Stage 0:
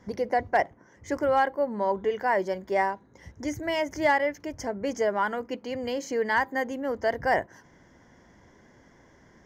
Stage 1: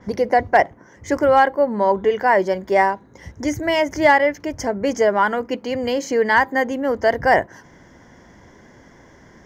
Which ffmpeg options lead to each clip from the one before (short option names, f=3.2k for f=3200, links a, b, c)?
-af "adynamicequalizer=threshold=0.00398:dfrequency=5700:dqfactor=0.7:tfrequency=5700:tqfactor=0.7:attack=5:release=100:ratio=0.375:range=2:mode=cutabove:tftype=highshelf,volume=9dB"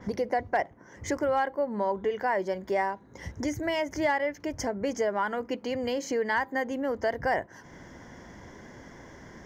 -af "acompressor=threshold=-34dB:ratio=2"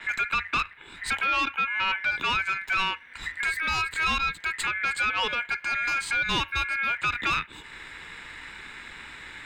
-af "asoftclip=type=tanh:threshold=-26dB,aeval=exprs='val(0)*sin(2*PI*2000*n/s)':c=same,afreqshift=-88,volume=8dB"